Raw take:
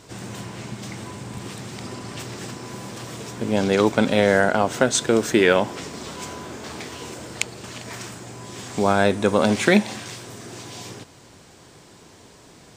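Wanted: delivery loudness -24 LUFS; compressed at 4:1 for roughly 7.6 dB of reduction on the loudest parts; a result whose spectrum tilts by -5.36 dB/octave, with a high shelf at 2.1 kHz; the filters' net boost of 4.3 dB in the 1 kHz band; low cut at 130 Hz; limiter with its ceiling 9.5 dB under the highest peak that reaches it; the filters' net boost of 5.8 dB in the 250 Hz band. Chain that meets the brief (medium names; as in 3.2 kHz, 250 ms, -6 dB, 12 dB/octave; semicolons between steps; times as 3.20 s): high-pass 130 Hz; peaking EQ 250 Hz +8 dB; peaking EQ 1 kHz +6.5 dB; treble shelf 2.1 kHz -5.5 dB; compression 4:1, threshold -17 dBFS; trim +3.5 dB; peak limiter -9 dBFS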